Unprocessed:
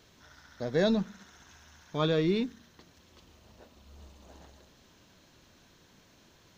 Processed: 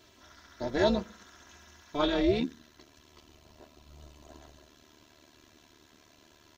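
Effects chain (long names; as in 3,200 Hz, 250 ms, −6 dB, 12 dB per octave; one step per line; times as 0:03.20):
high-pass filter 61 Hz
comb filter 3 ms, depth 94%
amplitude modulation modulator 280 Hz, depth 65%, from 0:02.39 modulator 75 Hz
level +2 dB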